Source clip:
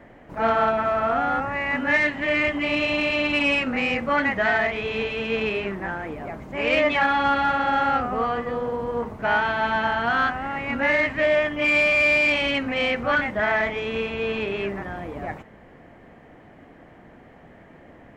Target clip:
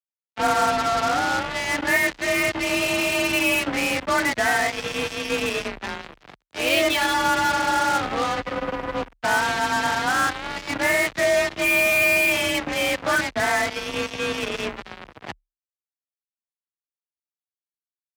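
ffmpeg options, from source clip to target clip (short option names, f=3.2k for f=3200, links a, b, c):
-filter_complex "[0:a]asettb=1/sr,asplit=3[a][b][c];[a]atrim=end=6.424[d];[b]atrim=start=6.42:end=7.14,asetpts=PTS-STARTPTS,afade=t=in:d=0.004:c=qsin,afade=t=out:st=0.716:d=0.004:c=qsin,equalizer=f=125:t=o:w=1:g=-12,equalizer=f=250:t=o:w=1:g=4,equalizer=f=1k:t=o:w=1:g=-4,equalizer=f=2k:t=o:w=1:g=-4,equalizer=f=4k:t=o:w=1:g=12[e];[c]atrim=start=7.136[f];[d][e]acrossfade=d=0.004:c1=hsin:c2=qsin[g];[g][f]acrossfade=d=0.004:c1=qsin:c2=hsin,acrusher=bits=3:mix=0:aa=0.5,afreqshift=34"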